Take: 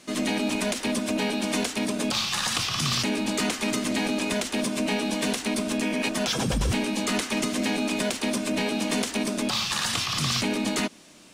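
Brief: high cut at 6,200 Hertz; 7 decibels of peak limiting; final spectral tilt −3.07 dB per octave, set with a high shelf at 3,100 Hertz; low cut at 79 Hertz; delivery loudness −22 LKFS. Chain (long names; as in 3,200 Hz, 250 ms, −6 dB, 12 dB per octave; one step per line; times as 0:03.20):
high-pass filter 79 Hz
low-pass filter 6,200 Hz
high-shelf EQ 3,100 Hz +5 dB
level +4 dB
brickwall limiter −12.5 dBFS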